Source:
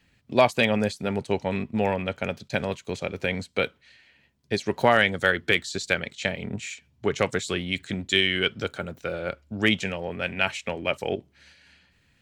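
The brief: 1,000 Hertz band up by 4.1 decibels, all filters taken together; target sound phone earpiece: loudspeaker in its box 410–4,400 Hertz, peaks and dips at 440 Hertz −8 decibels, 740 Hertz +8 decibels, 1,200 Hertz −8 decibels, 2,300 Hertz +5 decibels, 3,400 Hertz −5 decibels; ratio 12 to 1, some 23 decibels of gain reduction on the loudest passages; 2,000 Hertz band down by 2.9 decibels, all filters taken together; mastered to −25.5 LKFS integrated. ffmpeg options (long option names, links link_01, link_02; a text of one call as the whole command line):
ffmpeg -i in.wav -af "equalizer=frequency=1000:width_type=o:gain=3,equalizer=frequency=2000:width_type=o:gain=-6.5,acompressor=threshold=-36dB:ratio=12,highpass=410,equalizer=frequency=440:width_type=q:width=4:gain=-8,equalizer=frequency=740:width_type=q:width=4:gain=8,equalizer=frequency=1200:width_type=q:width=4:gain=-8,equalizer=frequency=2300:width_type=q:width=4:gain=5,equalizer=frequency=3400:width_type=q:width=4:gain=-5,lowpass=frequency=4400:width=0.5412,lowpass=frequency=4400:width=1.3066,volume=18.5dB" out.wav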